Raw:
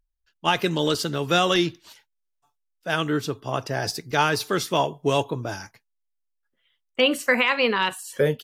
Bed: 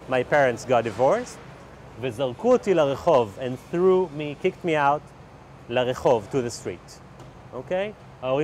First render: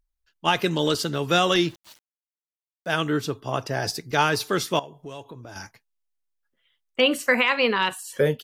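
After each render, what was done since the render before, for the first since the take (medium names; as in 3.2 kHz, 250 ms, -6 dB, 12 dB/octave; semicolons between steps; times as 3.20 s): 1.51–2.90 s: small samples zeroed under -47 dBFS; 4.79–5.56 s: compression 2.5:1, threshold -43 dBFS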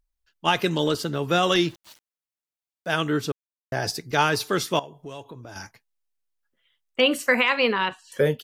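0.84–1.43 s: peaking EQ 5.8 kHz -5 dB 2.9 oct; 3.32–3.72 s: mute; 7.72–8.12 s: distance through air 180 m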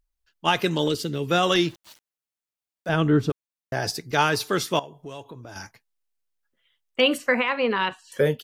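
0.88–1.31 s: high-order bell 990 Hz -9.5 dB; 2.89–3.30 s: tilt EQ -3 dB/octave; 7.17–7.70 s: low-pass 2.8 kHz -> 1.1 kHz 6 dB/octave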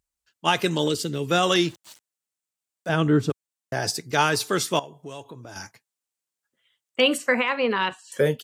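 high-pass 78 Hz; peaking EQ 7.9 kHz +7.5 dB 0.67 oct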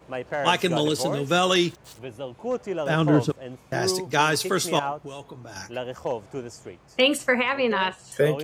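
add bed -9 dB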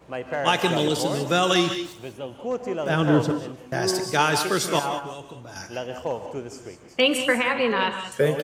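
feedback delay 151 ms, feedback 37%, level -18.5 dB; gated-style reverb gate 220 ms rising, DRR 7.5 dB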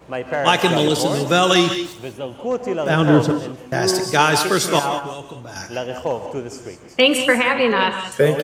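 trim +5.5 dB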